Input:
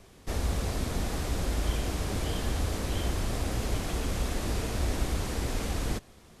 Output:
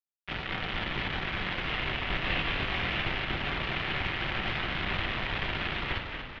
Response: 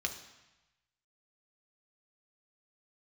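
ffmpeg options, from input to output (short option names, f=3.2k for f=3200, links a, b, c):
-filter_complex "[0:a]highpass=f=170:w=0.5412,highpass=f=170:w=1.3066,asplit=2[a][b];[b]acompressor=threshold=-52dB:ratio=5,volume=1dB[c];[a][c]amix=inputs=2:normalize=0,acrusher=bits=4:mix=0:aa=0.000001,asettb=1/sr,asplit=3[d][e][f];[d]atrim=end=2.214[g];[e]atrim=start=2.21:end=2.95,asetpts=PTS-STARTPTS,afade=t=in:d=0.004:c=qsin,afade=t=out:st=0.736:d=0.004:c=qsin,asplit=2[h][i];[i]adelay=22,volume=-3.5dB[j];[h][j]amix=inputs=2:normalize=0,atrim=end_sample=32634[k];[f]atrim=start=2.946[l];[g][k]acrossfade=d=0.004:c1=hsin:c2=qsin[m];[m][l]acrossfade=d=0.004:c1=qsin:c2=hsin,asplit=2[n][o];[1:a]atrim=start_sample=2205[p];[o][p]afir=irnorm=-1:irlink=0,volume=-3.5dB[q];[n][q]amix=inputs=2:normalize=0,highpass=f=260:t=q:w=0.5412,highpass=f=260:t=q:w=1.307,lowpass=f=3.5k:t=q:w=0.5176,lowpass=f=3.5k:t=q:w=0.7071,lowpass=f=3.5k:t=q:w=1.932,afreqshift=-350,asplit=9[r][s][t][u][v][w][x][y][z];[s]adelay=235,afreqshift=-51,volume=-6dB[aa];[t]adelay=470,afreqshift=-102,volume=-10.4dB[ab];[u]adelay=705,afreqshift=-153,volume=-14.9dB[ac];[v]adelay=940,afreqshift=-204,volume=-19.3dB[ad];[w]adelay=1175,afreqshift=-255,volume=-23.7dB[ae];[x]adelay=1410,afreqshift=-306,volume=-28.2dB[af];[y]adelay=1645,afreqshift=-357,volume=-32.6dB[ag];[z]adelay=1880,afreqshift=-408,volume=-37.1dB[ah];[r][aa][ab][ac][ad][ae][af][ag][ah]amix=inputs=9:normalize=0,volume=2.5dB"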